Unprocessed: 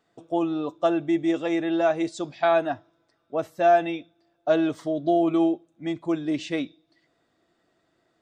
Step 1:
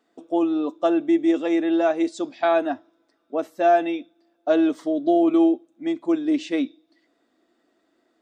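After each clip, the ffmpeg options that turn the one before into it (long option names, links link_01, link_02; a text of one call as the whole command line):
ffmpeg -i in.wav -af "lowshelf=frequency=190:width_type=q:width=3:gain=-9.5" out.wav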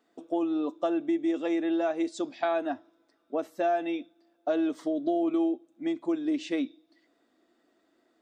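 ffmpeg -i in.wav -af "acompressor=threshold=-25dB:ratio=2.5,volume=-2dB" out.wav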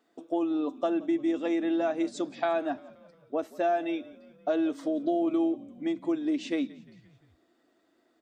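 ffmpeg -i in.wav -filter_complex "[0:a]asplit=5[link_01][link_02][link_03][link_04][link_05];[link_02]adelay=175,afreqshift=-47,volume=-21dB[link_06];[link_03]adelay=350,afreqshift=-94,volume=-25.9dB[link_07];[link_04]adelay=525,afreqshift=-141,volume=-30.8dB[link_08];[link_05]adelay=700,afreqshift=-188,volume=-35.6dB[link_09];[link_01][link_06][link_07][link_08][link_09]amix=inputs=5:normalize=0" out.wav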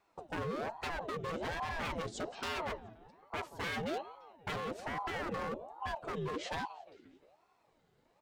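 ffmpeg -i in.wav -af "aeval=exprs='0.0335*(abs(mod(val(0)/0.0335+3,4)-2)-1)':channel_layout=same,afreqshift=-180,aeval=exprs='val(0)*sin(2*PI*590*n/s+590*0.55/1.2*sin(2*PI*1.2*n/s))':channel_layout=same" out.wav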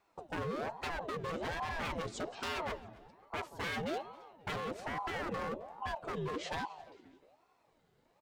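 ffmpeg -i in.wav -af "aecho=1:1:266|532:0.0708|0.0191" out.wav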